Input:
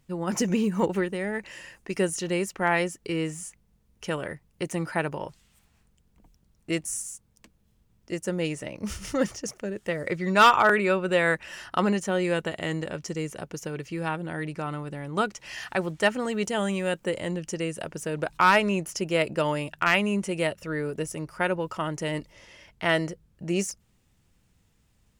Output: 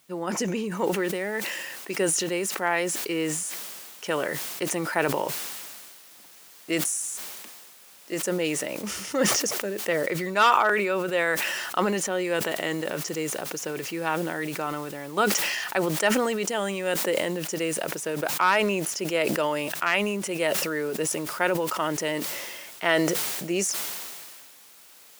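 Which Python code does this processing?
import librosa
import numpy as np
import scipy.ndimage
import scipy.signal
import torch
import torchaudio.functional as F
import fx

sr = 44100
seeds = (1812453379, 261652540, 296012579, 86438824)

y = fx.noise_floor_step(x, sr, seeds[0], at_s=0.77, before_db=-64, after_db=-53, tilt_db=0.0)
y = fx.rider(y, sr, range_db=3, speed_s=0.5)
y = scipy.signal.sosfilt(scipy.signal.butter(2, 290.0, 'highpass', fs=sr, output='sos'), y)
y = fx.sustainer(y, sr, db_per_s=28.0)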